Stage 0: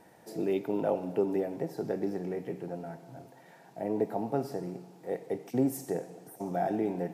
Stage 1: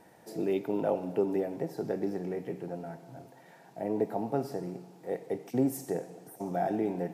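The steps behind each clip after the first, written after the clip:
no processing that can be heard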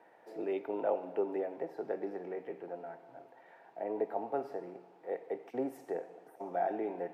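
three-way crossover with the lows and the highs turned down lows −21 dB, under 350 Hz, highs −20 dB, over 2,900 Hz
level −1 dB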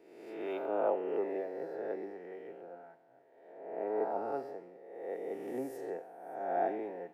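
peak hold with a rise ahead of every peak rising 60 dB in 1.86 s
multiband upward and downward expander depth 70%
level −4.5 dB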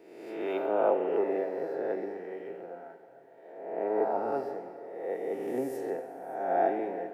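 dense smooth reverb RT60 2.8 s, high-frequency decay 0.8×, DRR 9.5 dB
level +5.5 dB

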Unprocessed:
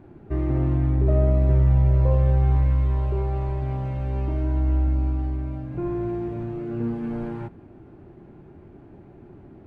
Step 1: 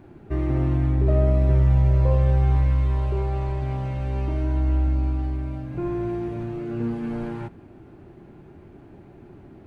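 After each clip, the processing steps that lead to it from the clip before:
high-shelf EQ 2,100 Hz +8 dB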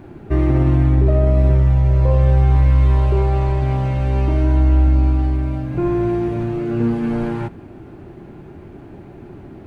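boost into a limiter +14 dB
level −5.5 dB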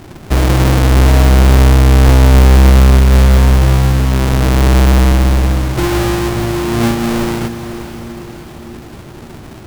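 each half-wave held at its own peak
feedback delay with all-pass diffusion 536 ms, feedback 49%, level −11 dB

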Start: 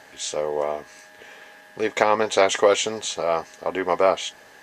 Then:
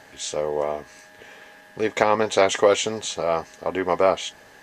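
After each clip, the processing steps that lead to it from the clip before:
low-shelf EQ 200 Hz +8.5 dB
level −1 dB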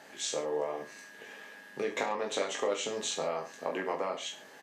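high-pass filter 160 Hz 24 dB per octave
downward compressor 6 to 1, threshold −25 dBFS, peak gain reduction 13 dB
on a send: reverse bouncing-ball delay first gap 20 ms, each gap 1.15×, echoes 5
on the sum: level −5.5 dB

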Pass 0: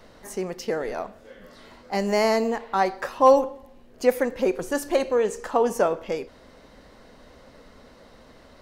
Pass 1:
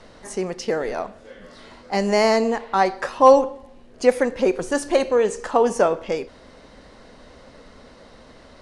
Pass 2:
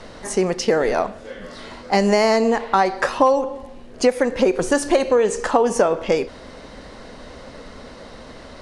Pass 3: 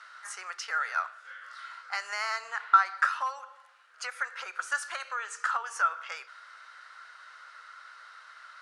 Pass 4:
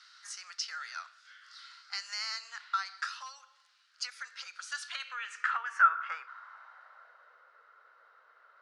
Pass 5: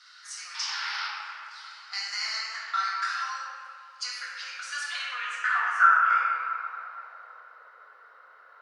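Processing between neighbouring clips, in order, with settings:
elliptic low-pass filter 9,900 Hz, stop band 60 dB; level +4.5 dB
downward compressor 8 to 1, threshold −20 dBFS, peak gain reduction 13.5 dB; level +7.5 dB
four-pole ladder high-pass 1,300 Hz, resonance 80%
band-pass filter sweep 4,800 Hz → 410 Hz, 0:04.57–0:07.48; level +6 dB
sound drawn into the spectrogram noise, 0:00.54–0:01.08, 790–5,600 Hz −42 dBFS; convolution reverb RT60 3.2 s, pre-delay 4 ms, DRR −7.5 dB

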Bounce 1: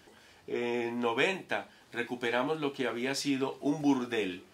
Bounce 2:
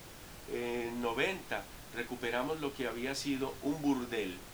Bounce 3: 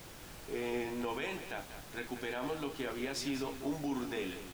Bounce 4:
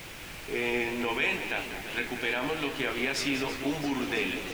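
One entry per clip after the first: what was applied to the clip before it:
background noise pink −46 dBFS; level −4.5 dB
brickwall limiter −27 dBFS, peak gain reduction 10 dB; on a send: single-tap delay 192 ms −11 dB
parametric band 2,400 Hz +10 dB 0.97 octaves; feedback echo with a swinging delay time 336 ms, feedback 77%, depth 161 cents, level −12.5 dB; level +5 dB

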